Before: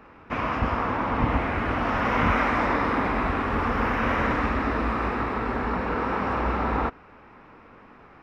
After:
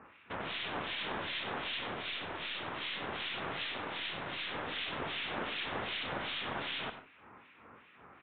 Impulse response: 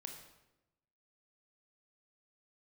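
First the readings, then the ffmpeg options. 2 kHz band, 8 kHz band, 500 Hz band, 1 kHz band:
−10.0 dB, can't be measured, −14.5 dB, −16.5 dB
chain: -filter_complex "[0:a]crystalizer=i=9:c=0,lowshelf=frequency=130:gain=5.5,aeval=exprs='(mod(10.6*val(0)+1,2)-1)/10.6':channel_layout=same,highpass=95,acrossover=split=1800[link_01][link_02];[link_01]aeval=exprs='val(0)*(1-1/2+1/2*cos(2*PI*2.6*n/s))':channel_layout=same[link_03];[link_02]aeval=exprs='val(0)*(1-1/2-1/2*cos(2*PI*2.6*n/s))':channel_layout=same[link_04];[link_03][link_04]amix=inputs=2:normalize=0,aeval=exprs='0.2*(cos(1*acos(clip(val(0)/0.2,-1,1)))-cos(1*PI/2))+0.00398*(cos(6*acos(clip(val(0)/0.2,-1,1)))-cos(6*PI/2))+0.0112*(cos(7*acos(clip(val(0)/0.2,-1,1)))-cos(7*PI/2))':channel_layout=same,asplit=2[link_05][link_06];[1:a]atrim=start_sample=2205,atrim=end_sample=3087,adelay=96[link_07];[link_06][link_07]afir=irnorm=-1:irlink=0,volume=-5.5dB[link_08];[link_05][link_08]amix=inputs=2:normalize=0,aresample=8000,aresample=44100,volume=-3.5dB"

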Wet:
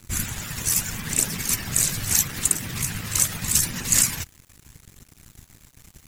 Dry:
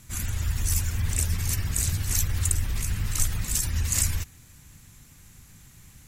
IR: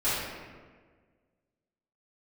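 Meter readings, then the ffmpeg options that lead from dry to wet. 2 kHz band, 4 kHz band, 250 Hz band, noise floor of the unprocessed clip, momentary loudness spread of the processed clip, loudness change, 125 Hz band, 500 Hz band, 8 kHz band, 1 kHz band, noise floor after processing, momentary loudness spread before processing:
+6.5 dB, +6.5 dB, +6.0 dB, −52 dBFS, 9 LU, +5.0 dB, −5.0 dB, +6.5 dB, +7.0 dB, +6.0 dB, −55 dBFS, 5 LU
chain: -af "aphaser=in_gain=1:out_gain=1:delay=2:decay=0.25:speed=0.79:type=triangular,afftfilt=real='re*lt(hypot(re,im),0.316)':imag='im*lt(hypot(re,im),0.316)':win_size=1024:overlap=0.75,aeval=exprs='sgn(val(0))*max(abs(val(0))-0.00376,0)':channel_layout=same,volume=7.5dB"

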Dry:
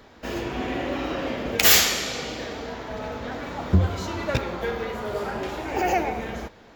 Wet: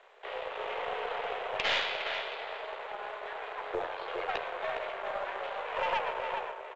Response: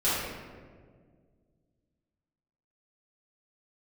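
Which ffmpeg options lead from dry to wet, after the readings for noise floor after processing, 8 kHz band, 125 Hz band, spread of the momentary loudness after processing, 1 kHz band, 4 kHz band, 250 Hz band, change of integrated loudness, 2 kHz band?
−44 dBFS, −31.5 dB, −32.0 dB, 10 LU, −4.5 dB, −10.5 dB, −24.0 dB, −10.5 dB, −6.5 dB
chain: -filter_complex "[0:a]asplit=2[link_01][link_02];[link_02]adelay=410,lowpass=frequency=2100:poles=1,volume=-5dB,asplit=2[link_03][link_04];[link_04]adelay=410,lowpass=frequency=2100:poles=1,volume=0.26,asplit=2[link_05][link_06];[link_06]adelay=410,lowpass=frequency=2100:poles=1,volume=0.26[link_07];[link_01][link_03][link_05][link_07]amix=inputs=4:normalize=0,aresample=11025,aeval=exprs='max(val(0),0)':channel_layout=same,aresample=44100,highpass=frequency=260:width_type=q:width=0.5412,highpass=frequency=260:width_type=q:width=1.307,lowpass=frequency=3400:width_type=q:width=0.5176,lowpass=frequency=3400:width_type=q:width=0.7071,lowpass=frequency=3400:width_type=q:width=1.932,afreqshift=170,aeval=exprs='(tanh(7.08*val(0)+0.35)-tanh(0.35))/7.08':channel_layout=same,volume=-1.5dB" -ar 16000 -c:a pcm_mulaw

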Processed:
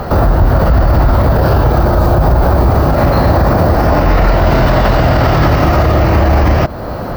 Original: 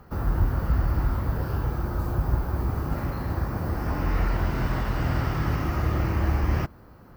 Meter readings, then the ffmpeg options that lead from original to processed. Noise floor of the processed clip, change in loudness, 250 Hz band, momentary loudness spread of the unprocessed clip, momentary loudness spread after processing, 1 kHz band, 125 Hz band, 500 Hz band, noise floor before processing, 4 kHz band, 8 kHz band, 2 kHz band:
−21 dBFS, +16.0 dB, +16.5 dB, 4 LU, 1 LU, +20.0 dB, +15.0 dB, +22.5 dB, −49 dBFS, +18.5 dB, can't be measured, +16.5 dB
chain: -filter_complex "[0:a]equalizer=frequency=630:width_type=o:width=0.67:gain=11,equalizer=frequency=4000:width_type=o:width=0.67:gain=6,equalizer=frequency=10000:width_type=o:width=0.67:gain=-7,asplit=2[link_01][link_02];[link_02]acompressor=threshold=-35dB:ratio=6,volume=2.5dB[link_03];[link_01][link_03]amix=inputs=2:normalize=0,alimiter=level_in=21dB:limit=-1dB:release=50:level=0:latency=1,volume=-1dB"

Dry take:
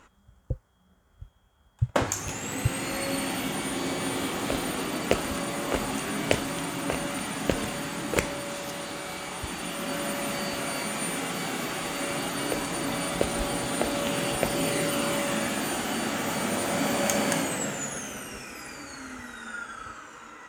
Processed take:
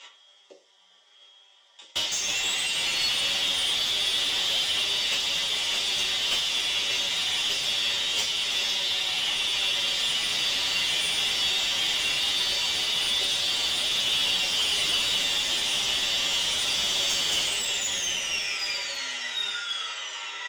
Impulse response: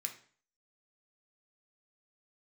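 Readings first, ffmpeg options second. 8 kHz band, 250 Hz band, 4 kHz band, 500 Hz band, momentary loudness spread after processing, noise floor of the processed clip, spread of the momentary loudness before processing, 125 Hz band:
+3.0 dB, −17.0 dB, +14.5 dB, −11.5 dB, 4 LU, −58 dBFS, 11 LU, −15.0 dB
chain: -filter_complex "[0:a]aecho=1:1:5.1:0.41,acrossover=split=3400[link_01][link_02];[link_01]acompressor=threshold=-36dB:ratio=6[link_03];[link_03][link_02]amix=inputs=2:normalize=0,highpass=frequency=410:width=0.5412,highpass=frequency=410:width=1.3066,equalizer=frequency=1600:width_type=q:width=4:gain=-7,equalizer=frequency=2500:width_type=q:width=4:gain=-9,equalizer=frequency=4200:width_type=q:width=4:gain=-7,lowpass=frequency=5100:width=0.5412,lowpass=frequency=5100:width=1.3066,aexciter=amount=9:drive=3.7:freq=2100[link_04];[1:a]atrim=start_sample=2205,asetrate=66150,aresample=44100[link_05];[link_04][link_05]afir=irnorm=-1:irlink=0,asplit=2[link_06][link_07];[link_07]highpass=frequency=720:poles=1,volume=25dB,asoftclip=type=tanh:threshold=-10dB[link_08];[link_06][link_08]amix=inputs=2:normalize=0,lowpass=frequency=2600:poles=1,volume=-6dB,asplit=2[link_09][link_10];[link_10]adelay=9,afreqshift=-1.1[link_11];[link_09][link_11]amix=inputs=2:normalize=1"

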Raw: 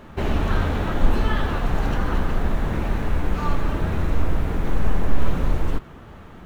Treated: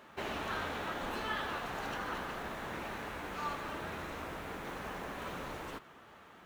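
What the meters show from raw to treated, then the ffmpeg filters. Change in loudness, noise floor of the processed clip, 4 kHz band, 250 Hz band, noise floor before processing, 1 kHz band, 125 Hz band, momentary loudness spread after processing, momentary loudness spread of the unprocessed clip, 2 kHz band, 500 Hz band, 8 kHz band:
−14.5 dB, −57 dBFS, −6.5 dB, −17.5 dB, −42 dBFS, −8.5 dB, −25.0 dB, 6 LU, 3 LU, −7.0 dB, −12.0 dB, can't be measured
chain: -af "highpass=frequency=870:poles=1,volume=-6dB"

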